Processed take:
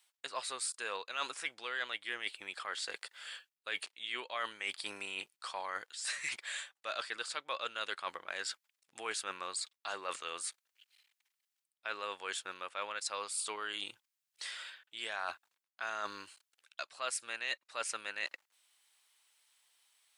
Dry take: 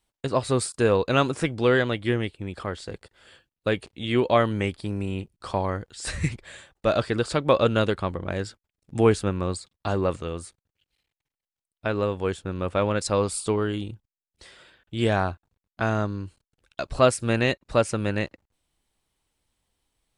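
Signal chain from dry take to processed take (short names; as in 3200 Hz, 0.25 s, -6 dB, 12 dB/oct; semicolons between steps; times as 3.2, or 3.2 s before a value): HPF 1400 Hz 12 dB/oct; reverse; compressor 5:1, threshold -45 dBFS, peak gain reduction 21 dB; reverse; gain +8 dB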